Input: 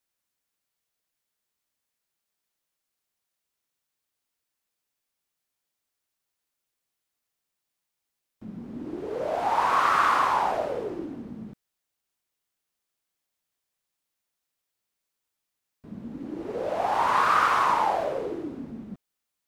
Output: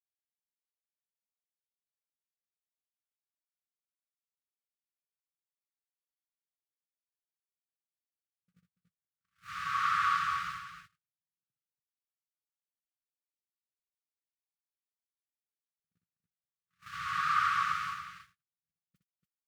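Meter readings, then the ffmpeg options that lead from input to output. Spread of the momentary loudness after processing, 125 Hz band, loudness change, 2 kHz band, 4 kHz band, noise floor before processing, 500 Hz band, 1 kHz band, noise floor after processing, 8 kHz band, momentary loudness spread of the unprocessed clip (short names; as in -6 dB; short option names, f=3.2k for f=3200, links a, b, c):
17 LU, -11.5 dB, -6.5 dB, -5.5 dB, -5.5 dB, -84 dBFS, under -40 dB, -10.0 dB, under -85 dBFS, -7.5 dB, 20 LU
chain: -filter_complex "[0:a]aeval=exprs='val(0)+0.5*0.015*sgn(val(0))':c=same,afftfilt=real='re*(1-between(b*sr/4096,190,1100))':imag='im*(1-between(b*sr/4096,190,1100))':win_size=4096:overlap=0.75,agate=range=-59dB:threshold=-36dB:ratio=16:detection=peak,acrossover=split=7000[a][b];[b]acompressor=threshold=-54dB:ratio=4:attack=1:release=60[c];[a][c]amix=inputs=2:normalize=0,highpass=60,aecho=1:1:62|285:0.473|0.447,volume=-7.5dB"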